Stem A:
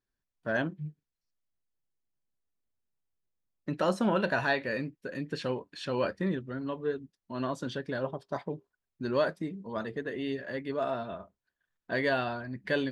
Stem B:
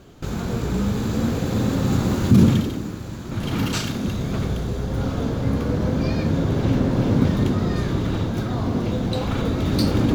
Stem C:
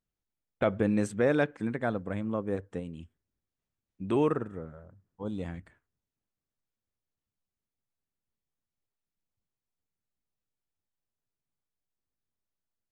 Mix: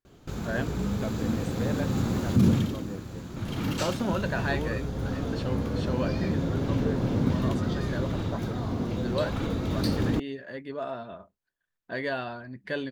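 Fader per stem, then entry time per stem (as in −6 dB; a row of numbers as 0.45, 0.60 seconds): −2.5, −7.0, −9.5 decibels; 0.00, 0.05, 0.40 seconds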